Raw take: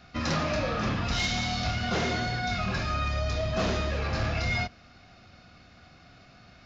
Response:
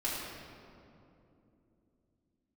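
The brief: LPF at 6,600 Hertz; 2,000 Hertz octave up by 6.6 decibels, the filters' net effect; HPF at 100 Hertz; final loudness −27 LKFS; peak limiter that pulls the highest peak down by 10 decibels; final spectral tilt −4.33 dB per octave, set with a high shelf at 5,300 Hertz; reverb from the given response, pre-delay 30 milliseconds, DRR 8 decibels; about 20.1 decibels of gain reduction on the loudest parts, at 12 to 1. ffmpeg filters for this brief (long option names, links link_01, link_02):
-filter_complex "[0:a]highpass=100,lowpass=6600,equalizer=frequency=2000:width_type=o:gain=7.5,highshelf=frequency=5300:gain=3.5,acompressor=threshold=-41dB:ratio=12,alimiter=level_in=14.5dB:limit=-24dB:level=0:latency=1,volume=-14.5dB,asplit=2[link_01][link_02];[1:a]atrim=start_sample=2205,adelay=30[link_03];[link_02][link_03]afir=irnorm=-1:irlink=0,volume=-14dB[link_04];[link_01][link_04]amix=inputs=2:normalize=0,volume=19.5dB"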